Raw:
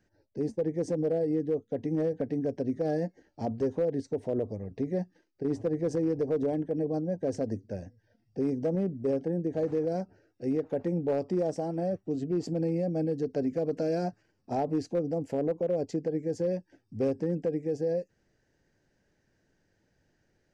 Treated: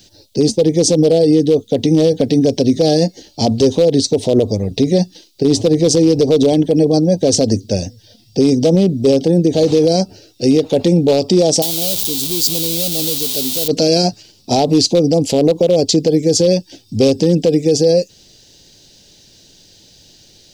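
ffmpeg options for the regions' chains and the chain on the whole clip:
ffmpeg -i in.wav -filter_complex "[0:a]asettb=1/sr,asplit=3[link_01][link_02][link_03];[link_01]atrim=end=11.624[link_04];[link_02]atrim=start=11.62:end=13.68,asetpts=PTS-STARTPTS,afade=type=in:duration=0.004:curve=qsin,afade=type=out:start_time=2.056:duration=0.004:curve=qsin,aeval=exprs='val(0)+0.5*0.0178*sgn(val(0))':channel_layout=same,aemphasis=mode=production:type=75fm[link_05];[link_03]atrim=start=13.676[link_06];[link_04][link_05]acrossfade=duration=0.004:curve1=hsin:curve2=qsin[link_07];[link_07][link_06]acrossfade=duration=0.004:curve1=qsin:curve2=hsin,highshelf=frequency=2500:width_type=q:width=3:gain=14,alimiter=level_in=22dB:limit=-1dB:release=50:level=0:latency=1,volume=-2.5dB" out.wav

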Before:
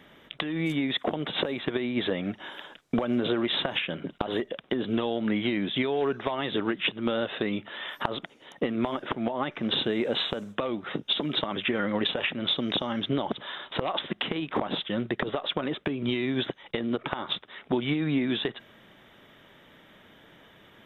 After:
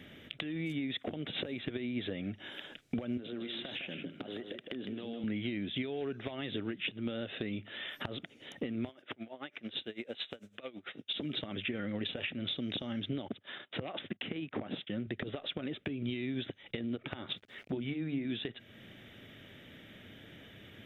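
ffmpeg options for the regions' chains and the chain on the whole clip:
ffmpeg -i in.wav -filter_complex "[0:a]asettb=1/sr,asplit=3[link_01][link_02][link_03];[link_01]atrim=end=3.174[link_04];[link_02]atrim=start=3.17:end=5.24,asetpts=PTS-STARTPTS,afade=type=in:duration=0.004:curve=qsin,afade=type=out:start_time=2.066:duration=0.004:curve=qsin,highpass=170,acompressor=threshold=-34dB:ratio=3:attack=3.2:release=140:knee=1:detection=peak,aecho=1:1:158:0.447,atrim=end_sample=91287[link_05];[link_03]atrim=start=5.236[link_06];[link_04][link_05]acrossfade=duration=0.004:curve1=hsin:curve2=qsin[link_07];[link_07][link_06]acrossfade=duration=0.004:curve1=qsin:curve2=hsin,asettb=1/sr,asplit=3[link_08][link_09][link_10];[link_08]atrim=end=8.894[link_11];[link_09]atrim=start=8.89:end=11.14,asetpts=PTS-STARTPTS,afade=type=in:duration=0.004:curve=qsin,afade=type=out:start_time=2.246:duration=0.004:curve=qsin,highpass=frequency=580:poles=1,aeval=exprs='val(0)*pow(10,-21*(0.5-0.5*cos(2*PI*9*n/s))/20)':channel_layout=same[link_12];[link_10]atrim=start=11.136[link_13];[link_11][link_12]acrossfade=duration=0.004:curve1=hsin:curve2=qsin[link_14];[link_14][link_13]acrossfade=duration=0.004:curve1=qsin:curve2=hsin,asettb=1/sr,asplit=3[link_15][link_16][link_17];[link_15]atrim=end=13.284[link_18];[link_16]atrim=start=13.28:end=15.07,asetpts=PTS-STARTPTS,afade=type=in:duration=0.004:curve=qsin,afade=type=out:start_time=1.786:duration=0.004:curve=qsin,agate=range=-26dB:threshold=-40dB:ratio=16:release=100:detection=peak,highpass=100,lowpass=2900[link_19];[link_17]atrim=start=15.066[link_20];[link_18][link_19]acrossfade=duration=0.004:curve1=hsin:curve2=qsin[link_21];[link_21][link_20]acrossfade=duration=0.004:curve1=qsin:curve2=hsin,asettb=1/sr,asplit=3[link_22][link_23][link_24];[link_22]atrim=end=17.334[link_25];[link_23]atrim=start=17.33:end=18.25,asetpts=PTS-STARTPTS,afade=type=in:duration=0.004:curve=qsin,afade=type=out:start_time=0.916:duration=0.004:curve=qsin,bandreject=frequency=50:width_type=h:width=6,bandreject=frequency=100:width_type=h:width=6,bandreject=frequency=150:width_type=h:width=6,bandreject=frequency=200:width_type=h:width=6,bandreject=frequency=250:width_type=h:width=6,bandreject=frequency=300:width_type=h:width=6,aeval=exprs='val(0)*gte(abs(val(0)),0.00251)':channel_layout=same,lowpass=frequency=2300:poles=1[link_26];[link_24]atrim=start=18.246[link_27];[link_25][link_26]acrossfade=duration=0.004:curve1=hsin:curve2=qsin[link_28];[link_28][link_27]acrossfade=duration=0.004:curve1=qsin:curve2=hsin,equalizer=frequency=100:width_type=o:width=0.67:gain=11,equalizer=frequency=250:width_type=o:width=0.67:gain=4,equalizer=frequency=1000:width_type=o:width=0.67:gain=-12,equalizer=frequency=2500:width_type=o:width=0.67:gain=4,acompressor=threshold=-43dB:ratio=2" out.wav

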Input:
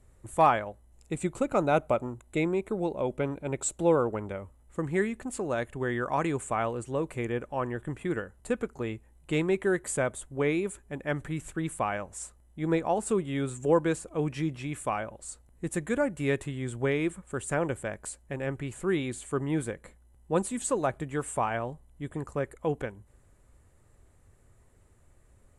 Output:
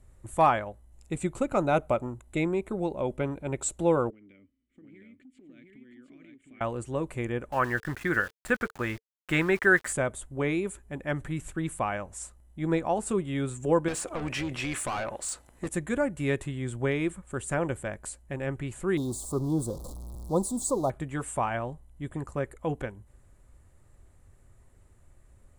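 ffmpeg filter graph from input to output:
ffmpeg -i in.wav -filter_complex "[0:a]asettb=1/sr,asplit=3[link_01][link_02][link_03];[link_01]atrim=end=4.104[link_04];[link_02]atrim=start=4.1:end=6.61,asetpts=PTS-STARTPTS,afade=type=in:duration=0.004:curve=qsin,afade=type=out:start_time=2.506:duration=0.004:curve=qsin,asplit=3[link_05][link_06][link_07];[link_05]bandpass=frequency=270:width_type=q:width=8,volume=0dB[link_08];[link_06]bandpass=frequency=2290:width_type=q:width=8,volume=-6dB[link_09];[link_07]bandpass=frequency=3010:width_type=q:width=8,volume=-9dB[link_10];[link_08][link_09][link_10]amix=inputs=3:normalize=0,acompressor=threshold=-51dB:ratio=6:attack=3.2:release=140:knee=1:detection=peak,aecho=1:1:711:0.708,atrim=end_sample=110691[link_11];[link_03]atrim=start=6.606[link_12];[link_04][link_11]acrossfade=duration=0.004:curve1=hsin:curve2=qsin[link_13];[link_13][link_12]acrossfade=duration=0.004:curve1=qsin:curve2=hsin,asettb=1/sr,asplit=3[link_14][link_15][link_16];[link_14]atrim=end=7.524[link_17];[link_15]atrim=start=7.52:end=9.93,asetpts=PTS-STARTPTS,afade=type=in:duration=0.004:curve=qsin,afade=type=out:start_time=2.406:duration=0.004:curve=qsin,equalizer=frequency=1600:width_type=o:width=1.1:gain=14.5,aeval=exprs='val(0)*gte(abs(val(0)),0.0075)':channel_layout=same[link_18];[link_16]atrim=start=9.926[link_19];[link_17][link_18]acrossfade=duration=0.004:curve1=hsin:curve2=qsin[link_20];[link_20][link_19]acrossfade=duration=0.004:curve1=qsin:curve2=hsin,asettb=1/sr,asplit=3[link_21][link_22][link_23];[link_21]atrim=end=13.884[link_24];[link_22]atrim=start=13.88:end=15.69,asetpts=PTS-STARTPTS,afade=type=in:duration=0.004:curve=qsin,afade=type=out:start_time=1.806:duration=0.004:curve=qsin,asplit=2[link_25][link_26];[link_26]highpass=frequency=720:poles=1,volume=23dB,asoftclip=type=tanh:threshold=-16.5dB[link_27];[link_25][link_27]amix=inputs=2:normalize=0,lowpass=frequency=5500:poles=1,volume=-6dB,tremolo=f=230:d=0.462,acompressor=threshold=-28dB:ratio=6:attack=3.2:release=140:knee=1:detection=peak[link_28];[link_23]atrim=start=15.686[link_29];[link_24][link_28]acrossfade=duration=0.004:curve1=hsin:curve2=qsin[link_30];[link_30][link_29]acrossfade=duration=0.004:curve1=qsin:curve2=hsin,asettb=1/sr,asplit=3[link_31][link_32][link_33];[link_31]atrim=end=18.974[link_34];[link_32]atrim=start=18.97:end=20.9,asetpts=PTS-STARTPTS,afade=type=in:duration=0.004:curve=qsin,afade=type=out:start_time=1.926:duration=0.004:curve=qsin,aeval=exprs='val(0)+0.5*0.0126*sgn(val(0))':channel_layout=same,asuperstop=centerf=2100:order=8:qfactor=0.74[link_35];[link_33]atrim=start=20.896[link_36];[link_34][link_35]acrossfade=duration=0.004:curve1=hsin:curve2=qsin[link_37];[link_37][link_36]acrossfade=duration=0.004:curve1=qsin:curve2=hsin,lowshelf=frequency=79:gain=5.5,bandreject=frequency=450:width=12" out.wav

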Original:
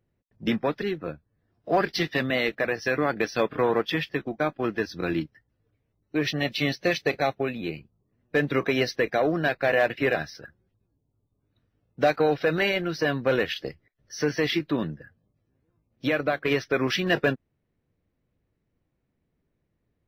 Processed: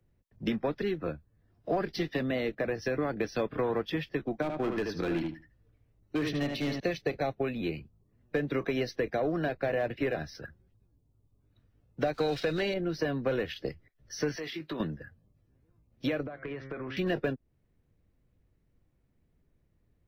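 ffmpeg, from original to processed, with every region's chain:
ffmpeg -i in.wav -filter_complex "[0:a]asettb=1/sr,asplit=3[link_01][link_02][link_03];[link_01]atrim=end=4.424[link_04];[link_02]atrim=start=4.42:end=6.8,asetpts=PTS-STARTPTS,afade=type=in:duration=0.004:curve=qsin,afade=type=out:start_time=2.376:duration=0.004:curve=qsin,volume=22.5dB,asoftclip=hard,volume=-22.5dB,asplit=2[link_05][link_06];[link_06]adelay=76,lowpass=frequency=3600:poles=1,volume=-5dB,asplit=2[link_07][link_08];[link_08]adelay=76,lowpass=frequency=3600:poles=1,volume=0.16,asplit=2[link_09][link_10];[link_10]adelay=76,lowpass=frequency=3600:poles=1,volume=0.16[link_11];[link_05][link_07][link_09][link_11]amix=inputs=4:normalize=0,atrim=end_sample=104958[link_12];[link_03]atrim=start=6.796[link_13];[link_04][link_12]acrossfade=duration=0.004:curve1=hsin:curve2=qsin[link_14];[link_14][link_13]acrossfade=duration=0.004:curve1=qsin:curve2=hsin,asettb=1/sr,asplit=3[link_15][link_16][link_17];[link_15]atrim=end=12.134[link_18];[link_16]atrim=start=12.13:end=12.74,asetpts=PTS-STARTPTS,afade=type=in:duration=0.004:curve=qsin,afade=type=out:start_time=0.606:duration=0.004:curve=qsin,aeval=exprs='val(0)+0.5*0.00944*sgn(val(0))':channel_layout=same,agate=range=-14dB:threshold=-38dB:ratio=16:release=100:detection=peak,equalizer=frequency=4400:width_type=o:width=1.8:gain=13.5[link_19];[link_17]atrim=start=12.736[link_20];[link_18][link_19]acrossfade=duration=0.004:curve1=hsin:curve2=qsin[link_21];[link_21][link_20]acrossfade=duration=0.004:curve1=qsin:curve2=hsin,asettb=1/sr,asplit=3[link_22][link_23][link_24];[link_22]atrim=end=14.364[link_25];[link_23]atrim=start=14.36:end=14.8,asetpts=PTS-STARTPTS,afade=type=in:duration=0.004:curve=qsin,afade=type=out:start_time=0.436:duration=0.004:curve=qsin,highpass=frequency=350:poles=1,acompressor=threshold=-33dB:ratio=5:attack=3.2:release=140:knee=1:detection=peak,asplit=2[link_26][link_27];[link_27]adelay=19,volume=-10dB[link_28];[link_26][link_28]amix=inputs=2:normalize=0,atrim=end_sample=19404[link_29];[link_24]atrim=start=14.796[link_30];[link_25][link_29]acrossfade=duration=0.004:curve1=hsin:curve2=qsin[link_31];[link_31][link_30]acrossfade=duration=0.004:curve1=qsin:curve2=hsin,asettb=1/sr,asplit=3[link_32][link_33][link_34];[link_32]atrim=end=16.264[link_35];[link_33]atrim=start=16.26:end=16.97,asetpts=PTS-STARTPTS,afade=type=in:duration=0.004:curve=qsin,afade=type=out:start_time=0.706:duration=0.004:curve=qsin,lowpass=2000,bandreject=frequency=134.1:width_type=h:width=4,bandreject=frequency=268.2:width_type=h:width=4,bandreject=frequency=402.3:width_type=h:width=4,bandreject=frequency=536.4:width_type=h:width=4,bandreject=frequency=670.5:width_type=h:width=4,bandreject=frequency=804.6:width_type=h:width=4,bandreject=frequency=938.7:width_type=h:width=4,bandreject=frequency=1072.8:width_type=h:width=4,bandreject=frequency=1206.9:width_type=h:width=4,bandreject=frequency=1341:width_type=h:width=4,bandreject=frequency=1475.1:width_type=h:width=4,bandreject=frequency=1609.2:width_type=h:width=4,bandreject=frequency=1743.3:width_type=h:width=4,bandreject=frequency=1877.4:width_type=h:width=4,bandreject=frequency=2011.5:width_type=h:width=4,bandreject=frequency=2145.6:width_type=h:width=4,bandreject=frequency=2279.7:width_type=h:width=4,acompressor=threshold=-35dB:ratio=10:attack=3.2:release=140:knee=1:detection=peak[link_36];[link_34]atrim=start=16.966[link_37];[link_35][link_36]acrossfade=duration=0.004:curve1=hsin:curve2=qsin[link_38];[link_38][link_37]acrossfade=duration=0.004:curve1=qsin:curve2=hsin,lowshelf=frequency=86:gain=11.5,acrossover=split=85|200|680[link_39][link_40][link_41][link_42];[link_39]acompressor=threshold=-49dB:ratio=4[link_43];[link_40]acompressor=threshold=-44dB:ratio=4[link_44];[link_41]acompressor=threshold=-29dB:ratio=4[link_45];[link_42]acompressor=threshold=-39dB:ratio=4[link_46];[link_43][link_44][link_45][link_46]amix=inputs=4:normalize=0" out.wav

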